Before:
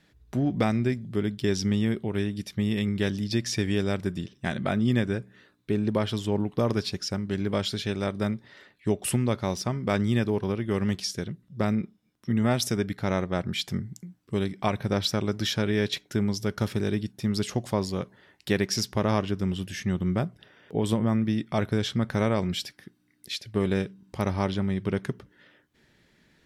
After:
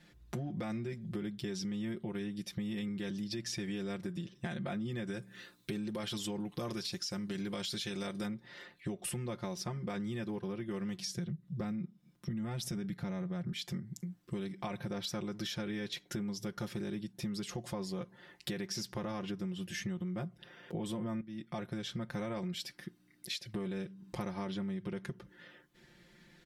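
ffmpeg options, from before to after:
ffmpeg -i in.wav -filter_complex "[0:a]asplit=3[link_01][link_02][link_03];[link_01]afade=type=out:start_time=5.06:duration=0.02[link_04];[link_02]highshelf=frequency=2800:gain=11.5,afade=type=in:start_time=5.06:duration=0.02,afade=type=out:start_time=8.25:duration=0.02[link_05];[link_03]afade=type=in:start_time=8.25:duration=0.02[link_06];[link_04][link_05][link_06]amix=inputs=3:normalize=0,asettb=1/sr,asplit=3[link_07][link_08][link_09];[link_07]atrim=end=10.984[link_10];[link_08]atrim=start=10.98:end=13.52,asetpts=PTS-STARTPTS,afade=type=in:duration=0.004:curve=qsin,afade=type=out:start_time=2.536:duration=0.004:curve=qsin,equalizer=frequency=150:width_type=o:width=0.77:gain=11[link_11];[link_09]atrim=start=13.516[link_12];[link_10][link_11]acrossfade=duration=0.004:curve1=hsin:curve2=qsin[link_13];[link_13][link_12]acrossfade=duration=0.004:curve1=qsin:curve2=hsin,asplit=2[link_14][link_15];[link_14]atrim=end=21.21,asetpts=PTS-STARTPTS,afade=type=out:start_time=21.206:duration=0.004:curve=hsin:silence=0.149624[link_16];[link_15]atrim=start=21.21,asetpts=PTS-STARTPTS,afade=type=in:duration=1.37:silence=0.149624[link_17];[link_16][link_17]concat=n=2:v=0:a=1,aecho=1:1:5.7:0.92,alimiter=limit=-17.5dB:level=0:latency=1:release=20,acompressor=threshold=-35dB:ratio=6,volume=-1.5dB" out.wav

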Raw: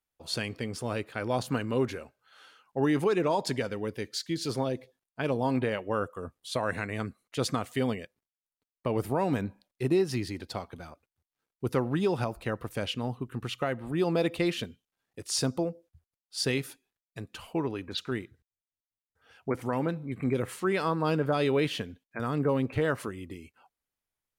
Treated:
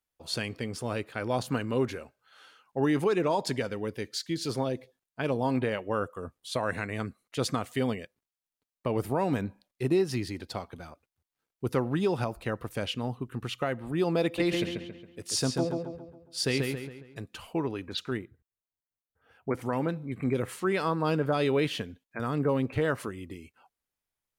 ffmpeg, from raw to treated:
ffmpeg -i in.wav -filter_complex "[0:a]asettb=1/sr,asplit=3[link_01][link_02][link_03];[link_01]atrim=end=14.244[link_04];[link_02]atrim=start=14.24:end=17.21,asetpts=PTS-STARTPTS,afade=type=in:duration=0.004:curve=qsin,afade=type=out:start_time=2.966:duration=0.004:curve=qsin,asplit=2[link_05][link_06];[link_06]adelay=137,lowpass=frequency=3900:poles=1,volume=-3.5dB,asplit=2[link_07][link_08];[link_08]adelay=137,lowpass=frequency=3900:poles=1,volume=0.45,asplit=2[link_09][link_10];[link_10]adelay=137,lowpass=frequency=3900:poles=1,volume=0.45,asplit=2[link_11][link_12];[link_12]adelay=137,lowpass=frequency=3900:poles=1,volume=0.45,asplit=2[link_13][link_14];[link_14]adelay=137,lowpass=frequency=3900:poles=1,volume=0.45,asplit=2[link_15][link_16];[link_16]adelay=137,lowpass=frequency=3900:poles=1,volume=0.45[link_17];[link_05][link_07][link_09][link_11][link_13][link_15][link_17]amix=inputs=7:normalize=0,atrim=end_sample=130977[link_18];[link_03]atrim=start=17.206[link_19];[link_04][link_18]acrossfade=duration=0.004:curve1=hsin:curve2=qsin[link_20];[link_20][link_19]acrossfade=duration=0.004:curve1=qsin:curve2=hsin,asettb=1/sr,asplit=3[link_21][link_22][link_23];[link_21]atrim=end=18.174[link_24];[link_22]atrim=start=18.17:end=19.49,asetpts=PTS-STARTPTS,afade=type=in:duration=0.004:curve=qsin,afade=type=out:start_time=1.316:duration=0.004:curve=qsin,equalizer=frequency=5400:width_type=o:width=2.2:gain=-12.5[link_25];[link_23]atrim=start=19.486[link_26];[link_24][link_25]acrossfade=duration=0.004:curve1=hsin:curve2=qsin[link_27];[link_27][link_26]acrossfade=duration=0.004:curve1=qsin:curve2=hsin" out.wav

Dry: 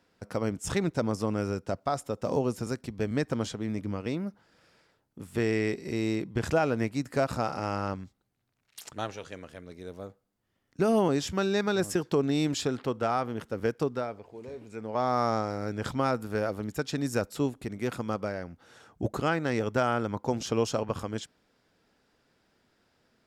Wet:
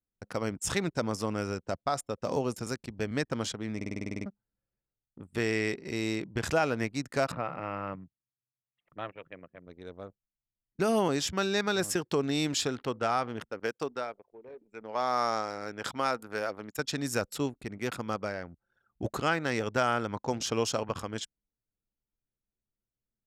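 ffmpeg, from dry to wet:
ffmpeg -i in.wav -filter_complex "[0:a]asplit=3[link_01][link_02][link_03];[link_01]afade=type=out:start_time=7.31:duration=0.02[link_04];[link_02]highpass=120,equalizer=frequency=160:width_type=q:width=4:gain=7,equalizer=frequency=220:width_type=q:width=4:gain=-6,equalizer=frequency=400:width_type=q:width=4:gain=-5,equalizer=frequency=820:width_type=q:width=4:gain=-7,equalizer=frequency=1500:width_type=q:width=4:gain=-6,lowpass=frequency=2500:width=0.5412,lowpass=frequency=2500:width=1.3066,afade=type=in:start_time=7.31:duration=0.02,afade=type=out:start_time=9.66:duration=0.02[link_05];[link_03]afade=type=in:start_time=9.66:duration=0.02[link_06];[link_04][link_05][link_06]amix=inputs=3:normalize=0,asettb=1/sr,asplit=3[link_07][link_08][link_09];[link_07]atrim=end=13.494[link_10];[link_08]atrim=start=13.49:end=16.79,asetpts=PTS-STARTPTS,afade=type=in:duration=0.004:curve=qsin,afade=type=out:start_time=3.296:duration=0.004:curve=qsin,highpass=frequency=380:poles=1[link_11];[link_09]atrim=start=16.786[link_12];[link_10][link_11]acrossfade=duration=0.004:curve1=hsin:curve2=qsin[link_13];[link_13][link_12]acrossfade=duration=0.004:curve1=qsin:curve2=hsin,asplit=11[link_14][link_15][link_16][link_17][link_18][link_19][link_20][link_21][link_22][link_23][link_24];[link_14]atrim=end=3.812[link_25];[link_15]atrim=start=3.758:end=3.812[link_26];[link_16]atrim=start=3.758:end=3.812[link_27];[link_17]atrim=start=3.758:end=3.812[link_28];[link_18]atrim=start=3.758:end=3.812[link_29];[link_19]atrim=start=3.758:end=3.812[link_30];[link_20]atrim=start=3.758:end=3.812[link_31];[link_21]atrim=start=3.758:end=3.812[link_32];[link_22]atrim=start=3.758:end=3.812[link_33];[link_23]atrim=start=3.758:end=3.812[link_34];[link_24]atrim=start=4.258[link_35];[link_25][link_26]acrossfade=duration=0.004:curve1=hsin:curve2=hsin[link_36];[link_36][link_27]acrossfade=duration=0.004:curve1=hsin:curve2=hsin[link_37];[link_37][link_28]acrossfade=duration=0.004:curve1=hsin:curve2=hsin[link_38];[link_38][link_29]acrossfade=duration=0.004:curve1=hsin:curve2=hsin[link_39];[link_39][link_30]acrossfade=duration=0.004:curve1=hsin:curve2=hsin[link_40];[link_40][link_31]acrossfade=duration=0.004:curve1=hsin:curve2=hsin[link_41];[link_41][link_32]acrossfade=duration=0.004:curve1=hsin:curve2=hsin[link_42];[link_42][link_33]acrossfade=duration=0.004:curve1=hsin:curve2=hsin[link_43];[link_43][link_34]acrossfade=duration=0.004:curve1=hsin:curve2=hsin[link_44];[link_44][link_35]acrossfade=duration=0.004:curve1=hsin:curve2=hsin,anlmdn=0.0631,tiltshelf=frequency=970:gain=-4" out.wav

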